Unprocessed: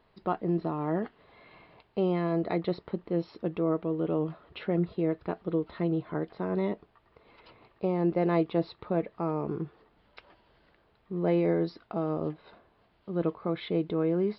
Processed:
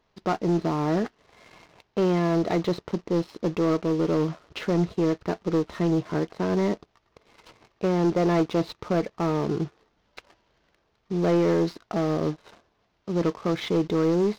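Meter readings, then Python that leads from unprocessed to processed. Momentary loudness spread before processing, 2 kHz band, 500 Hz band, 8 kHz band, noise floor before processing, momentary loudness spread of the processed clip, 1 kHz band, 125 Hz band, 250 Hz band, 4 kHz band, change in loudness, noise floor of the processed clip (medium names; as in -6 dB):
9 LU, +7.0 dB, +4.5 dB, no reading, -67 dBFS, 8 LU, +5.5 dB, +5.5 dB, +5.0 dB, +9.5 dB, +5.0 dB, -71 dBFS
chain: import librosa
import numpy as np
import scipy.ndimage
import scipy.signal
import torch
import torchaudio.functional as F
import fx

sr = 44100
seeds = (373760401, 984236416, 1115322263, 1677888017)

y = fx.cvsd(x, sr, bps=32000)
y = fx.leveller(y, sr, passes=2)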